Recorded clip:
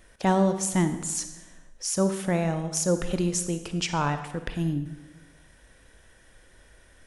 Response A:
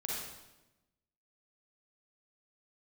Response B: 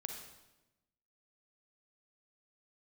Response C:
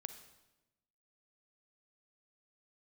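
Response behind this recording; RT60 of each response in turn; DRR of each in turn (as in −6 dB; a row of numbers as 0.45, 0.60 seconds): C; 1.0, 1.0, 1.0 seconds; −4.5, 3.0, 9.0 decibels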